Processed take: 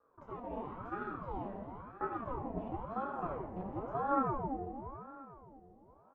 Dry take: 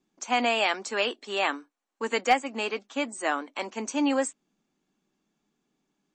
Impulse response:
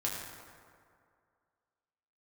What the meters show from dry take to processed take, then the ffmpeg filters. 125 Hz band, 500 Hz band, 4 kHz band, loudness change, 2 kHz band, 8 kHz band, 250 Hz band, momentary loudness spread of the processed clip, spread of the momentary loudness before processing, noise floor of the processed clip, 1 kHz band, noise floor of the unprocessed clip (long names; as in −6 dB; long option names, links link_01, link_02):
can't be measured, −11.0 dB, below −35 dB, −12.0 dB, −22.0 dB, below −40 dB, −9.5 dB, 17 LU, 9 LU, −64 dBFS, −8.5 dB, −83 dBFS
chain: -filter_complex "[0:a]aeval=exprs='if(lt(val(0),0),0.251*val(0),val(0))':channel_layout=same,lowshelf=frequency=340:gain=-10.5,aecho=1:1:1.2:0.39,acompressor=threshold=-38dB:ratio=6,alimiter=level_in=14dB:limit=-24dB:level=0:latency=1:release=391,volume=-14dB,asubboost=boost=5.5:cutoff=180,lowpass=frequency=460:width_type=q:width=4,aecho=1:1:344|688|1032|1376|1720:0.299|0.146|0.0717|0.0351|0.0172[link_01];[1:a]atrim=start_sample=2205,asetrate=48510,aresample=44100[link_02];[link_01][link_02]afir=irnorm=-1:irlink=0,aeval=exprs='val(0)*sin(2*PI*510*n/s+510*0.65/0.97*sin(2*PI*0.97*n/s))':channel_layout=same,volume=12.5dB"